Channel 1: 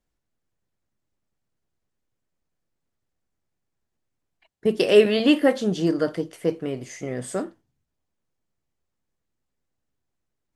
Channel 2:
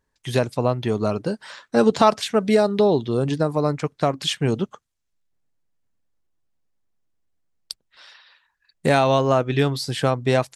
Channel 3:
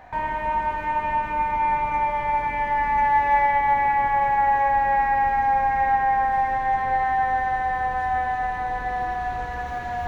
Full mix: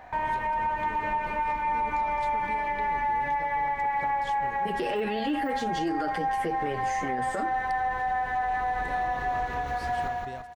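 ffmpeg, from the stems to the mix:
-filter_complex "[0:a]deesser=0.9,equalizer=f=1700:t=o:w=2.3:g=8,asplit=2[s0][s1];[s1]adelay=7.6,afreqshift=-1.3[s2];[s0][s2]amix=inputs=2:normalize=1,volume=1.41[s3];[1:a]acompressor=threshold=0.1:ratio=6,volume=0.112[s4];[2:a]acompressor=threshold=0.0708:ratio=6,bass=f=250:g=-3,treble=f=4000:g=0,volume=0.944,asplit=2[s5][s6];[s6]volume=0.631,aecho=0:1:171|342|513|684|855|1026|1197:1|0.48|0.23|0.111|0.0531|0.0255|0.0122[s7];[s3][s4][s5][s7]amix=inputs=4:normalize=0,alimiter=limit=0.0891:level=0:latency=1:release=83"

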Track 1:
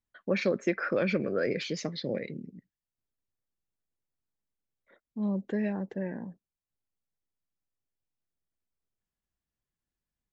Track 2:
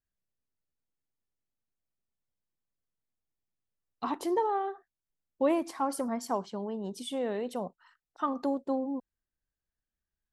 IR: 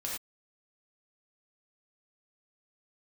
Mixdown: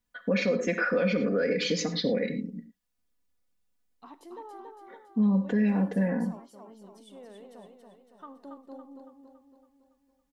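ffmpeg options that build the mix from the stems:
-filter_complex "[0:a]aecho=1:1:4.1:0.9,volume=1.41,asplit=3[s0][s1][s2];[s1]volume=0.398[s3];[1:a]volume=0.141,asplit=3[s4][s5][s6];[s5]volume=0.178[s7];[s6]volume=0.631[s8];[s2]apad=whole_len=455314[s9];[s4][s9]sidechaincompress=threshold=0.0355:ratio=8:attack=16:release=1020[s10];[2:a]atrim=start_sample=2205[s11];[s3][s7]amix=inputs=2:normalize=0[s12];[s12][s11]afir=irnorm=-1:irlink=0[s13];[s8]aecho=0:1:280|560|840|1120|1400|1680|1960|2240:1|0.52|0.27|0.141|0.0731|0.038|0.0198|0.0103[s14];[s0][s10][s13][s14]amix=inputs=4:normalize=0,alimiter=limit=0.133:level=0:latency=1:release=131"

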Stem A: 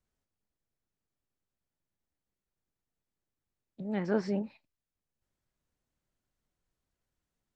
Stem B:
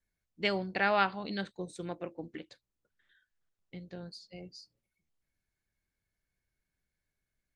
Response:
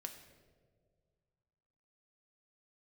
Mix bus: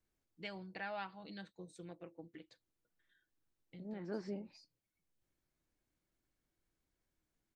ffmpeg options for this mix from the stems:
-filter_complex "[0:a]equalizer=f=320:t=o:w=0.45:g=8,volume=0.75[s0];[1:a]aecho=1:1:6.2:0.5,volume=0.355,asplit=2[s1][s2];[s2]apad=whole_len=333297[s3];[s0][s3]sidechaincompress=threshold=0.00251:ratio=8:attack=12:release=253[s4];[s4][s1]amix=inputs=2:normalize=0,acompressor=threshold=0.00178:ratio=1.5"

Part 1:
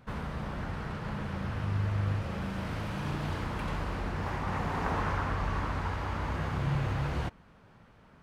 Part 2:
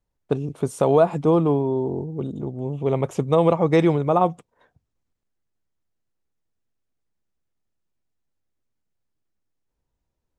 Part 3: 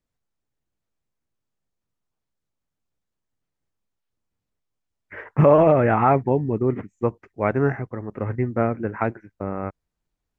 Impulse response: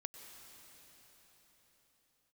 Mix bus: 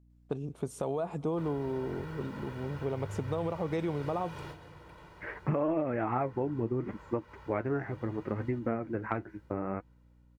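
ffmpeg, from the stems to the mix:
-filter_complex "[0:a]highpass=f=150:p=1,aecho=1:1:2.1:0.86,acrusher=bits=9:mix=0:aa=0.000001,adelay=1300,volume=0.299,asplit=2[s0][s1];[s1]volume=0.501[s2];[1:a]alimiter=limit=0.335:level=0:latency=1:release=36,aeval=exprs='val(0)+0.00282*(sin(2*PI*60*n/s)+sin(2*PI*2*60*n/s)/2+sin(2*PI*3*60*n/s)/3+sin(2*PI*4*60*n/s)/4+sin(2*PI*5*60*n/s)/5)':c=same,volume=0.316,asplit=3[s3][s4][s5];[s4]volume=0.168[s6];[2:a]equalizer=f=320:t=o:w=0.24:g=7.5,flanger=delay=3.3:depth=6.9:regen=52:speed=0.71:shape=sinusoidal,adelay=100,volume=1.06[s7];[s5]apad=whole_len=419958[s8];[s0][s8]sidechaingate=range=0.0224:threshold=0.00141:ratio=16:detection=peak[s9];[3:a]atrim=start_sample=2205[s10];[s2][s6]amix=inputs=2:normalize=0[s11];[s11][s10]afir=irnorm=-1:irlink=0[s12];[s9][s3][s7][s12]amix=inputs=4:normalize=0,acompressor=threshold=0.0355:ratio=4"

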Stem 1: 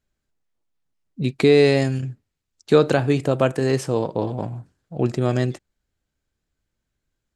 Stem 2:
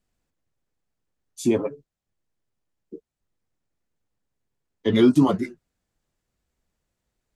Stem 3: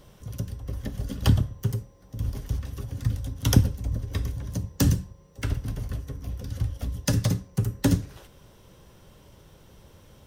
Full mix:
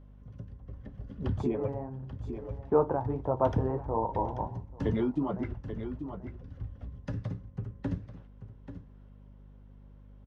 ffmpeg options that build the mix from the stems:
-filter_complex "[0:a]flanger=delay=8.9:depth=5.9:regen=-45:speed=1.5:shape=triangular,lowpass=f=930:t=q:w=7.1,volume=0.376,asplit=2[s0][s1];[s1]volume=0.0794[s2];[1:a]acompressor=threshold=0.0631:ratio=4,volume=0.631,asplit=3[s3][s4][s5];[s4]volume=0.355[s6];[2:a]volume=0.251,asplit=2[s7][s8];[s8]volume=0.266[s9];[s5]apad=whole_len=324312[s10];[s0][s10]sidechaincompress=threshold=0.00891:ratio=4:attack=10:release=531[s11];[s2][s6][s9]amix=inputs=3:normalize=0,aecho=0:1:836:1[s12];[s11][s3][s7][s12]amix=inputs=4:normalize=0,lowpass=1800,aeval=exprs='val(0)+0.00282*(sin(2*PI*50*n/s)+sin(2*PI*2*50*n/s)/2+sin(2*PI*3*50*n/s)/3+sin(2*PI*4*50*n/s)/4+sin(2*PI*5*50*n/s)/5)':c=same"

